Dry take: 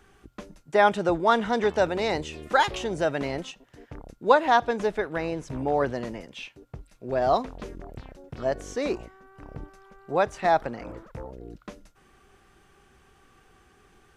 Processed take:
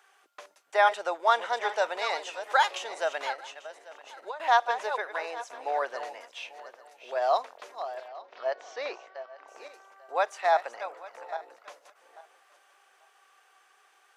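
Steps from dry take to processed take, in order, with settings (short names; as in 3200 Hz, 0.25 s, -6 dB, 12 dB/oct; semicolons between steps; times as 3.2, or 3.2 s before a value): regenerating reverse delay 0.421 s, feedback 40%, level -11 dB; HPF 600 Hz 24 dB/oct; 3.32–4.4 compressor 5:1, threshold -37 dBFS, peak gain reduction 19.5 dB; 8.08–9.48 LPF 4900 Hz 24 dB/oct; gain -1 dB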